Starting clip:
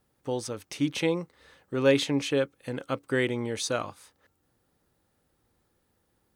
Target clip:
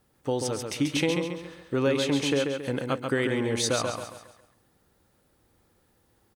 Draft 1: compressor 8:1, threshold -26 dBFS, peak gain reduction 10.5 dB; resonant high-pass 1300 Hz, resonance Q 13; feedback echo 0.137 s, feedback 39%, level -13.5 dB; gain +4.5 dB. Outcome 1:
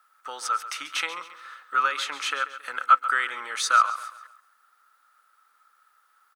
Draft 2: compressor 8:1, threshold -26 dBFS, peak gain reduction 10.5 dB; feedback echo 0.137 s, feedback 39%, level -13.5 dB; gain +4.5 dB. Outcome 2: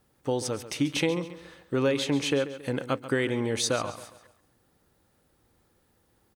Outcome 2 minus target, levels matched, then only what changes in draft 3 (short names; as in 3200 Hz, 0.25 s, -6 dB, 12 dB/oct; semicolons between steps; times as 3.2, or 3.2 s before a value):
echo-to-direct -8.5 dB
change: feedback echo 0.137 s, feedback 39%, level -5 dB